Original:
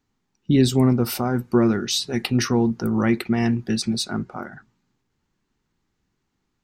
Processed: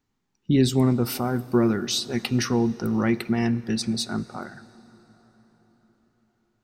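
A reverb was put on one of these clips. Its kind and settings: plate-style reverb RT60 4.9 s, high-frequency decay 0.65×, DRR 17.5 dB; gain -2.5 dB

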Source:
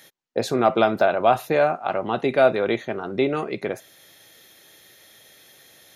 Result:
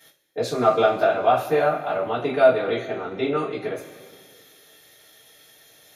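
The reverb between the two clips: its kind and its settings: two-slope reverb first 0.25 s, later 2 s, from -18 dB, DRR -9.5 dB; gain -11 dB

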